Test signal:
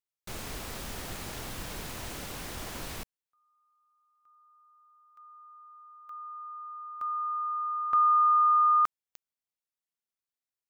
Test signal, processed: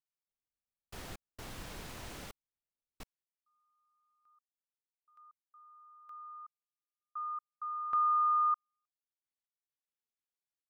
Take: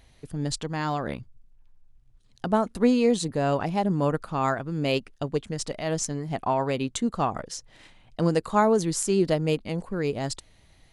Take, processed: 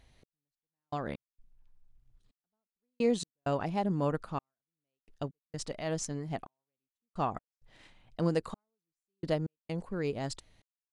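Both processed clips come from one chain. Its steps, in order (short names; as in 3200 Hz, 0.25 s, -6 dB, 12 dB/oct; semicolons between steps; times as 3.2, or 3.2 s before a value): step gate "x...x.xxx" 65 bpm -60 dB; high shelf 8400 Hz -6 dB; gain -6 dB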